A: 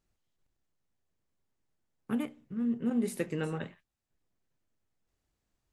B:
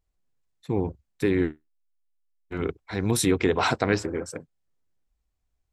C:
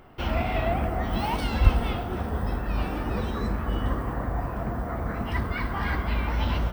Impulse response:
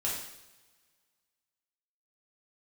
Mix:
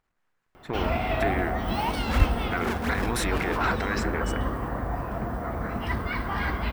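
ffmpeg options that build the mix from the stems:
-filter_complex "[0:a]acrusher=samples=41:mix=1:aa=0.000001:lfo=1:lforange=65.6:lforate=3,volume=0.841[s0];[1:a]aeval=exprs='if(lt(val(0),0),0.447*val(0),val(0))':c=same,equalizer=f=1000:w=0.45:g=8,volume=0.891[s1];[2:a]adelay=550,volume=1.12[s2];[s0][s1]amix=inputs=2:normalize=0,equalizer=f=1600:t=o:w=1.7:g=10.5,alimiter=limit=0.133:level=0:latency=1:release=24,volume=1[s3];[s2][s3]amix=inputs=2:normalize=0,lowshelf=f=160:g=-4"

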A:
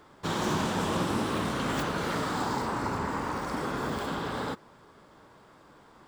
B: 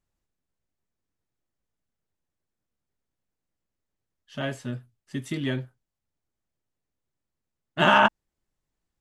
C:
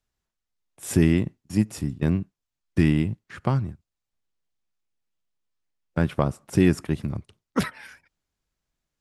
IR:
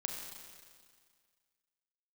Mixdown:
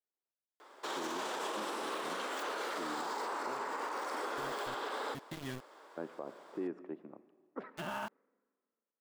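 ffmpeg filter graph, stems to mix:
-filter_complex "[0:a]highpass=f=380:w=0.5412,highpass=f=380:w=1.3066,adelay=600,volume=0.891,asplit=2[s0][s1];[s1]volume=0.0891[s2];[1:a]deesser=0.8,aeval=exprs='val(0)*gte(abs(val(0)),0.0422)':c=same,volume=0.211[s3];[2:a]highpass=f=310:w=0.5412,highpass=f=310:w=1.3066,lowpass=1000,volume=0.237,asplit=2[s4][s5];[s5]volume=0.237[s6];[3:a]atrim=start_sample=2205[s7];[s2][s6]amix=inputs=2:normalize=0[s8];[s8][s7]afir=irnorm=-1:irlink=0[s9];[s0][s3][s4][s9]amix=inputs=4:normalize=0,alimiter=level_in=1.88:limit=0.0631:level=0:latency=1:release=77,volume=0.531"

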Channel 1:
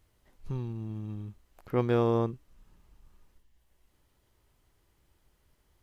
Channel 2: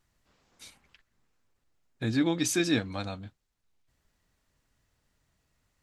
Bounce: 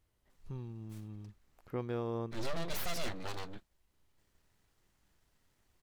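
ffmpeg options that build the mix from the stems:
-filter_complex "[0:a]volume=0.376,asplit=2[s0][s1];[1:a]aeval=exprs='abs(val(0))':c=same,asoftclip=type=tanh:threshold=0.0562,adelay=300,volume=1[s2];[s1]apad=whole_len=270164[s3];[s2][s3]sidechaincompress=threshold=0.00251:ratio=8:attack=27:release=105[s4];[s0][s4]amix=inputs=2:normalize=0,alimiter=level_in=1.5:limit=0.0631:level=0:latency=1:release=450,volume=0.668"

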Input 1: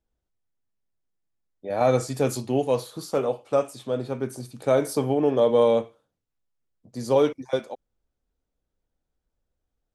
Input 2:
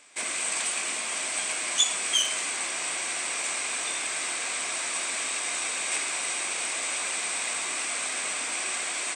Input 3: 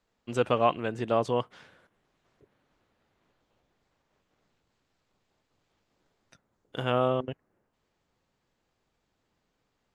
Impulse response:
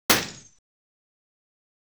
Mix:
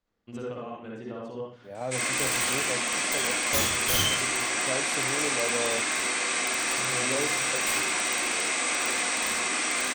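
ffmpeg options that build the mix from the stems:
-filter_complex "[0:a]acrusher=bits=9:mix=0:aa=0.000001,volume=0.211[s0];[1:a]aeval=exprs='(mod(9.44*val(0)+1,2)-1)/9.44':c=same,adelay=1750,volume=0.891,asplit=2[s1][s2];[s2]volume=0.112[s3];[2:a]acompressor=threshold=0.0224:ratio=4,volume=0.376,asplit=2[s4][s5];[s5]volume=0.1[s6];[3:a]atrim=start_sample=2205[s7];[s3][s6]amix=inputs=2:normalize=0[s8];[s8][s7]afir=irnorm=-1:irlink=0[s9];[s0][s1][s4][s9]amix=inputs=4:normalize=0,lowshelf=f=100:g=6.5"

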